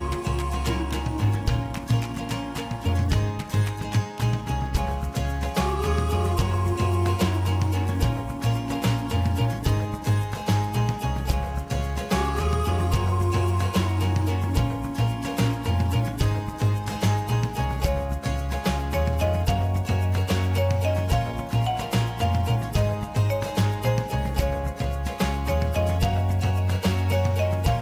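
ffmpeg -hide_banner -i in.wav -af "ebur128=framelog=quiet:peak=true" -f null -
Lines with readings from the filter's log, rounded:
Integrated loudness:
  I:         -25.1 LUFS
  Threshold: -35.1 LUFS
Loudness range:
  LRA:         1.8 LU
  Threshold: -45.1 LUFS
  LRA low:   -26.1 LUFS
  LRA high:  -24.3 LUFS
True peak:
  Peak:      -12.9 dBFS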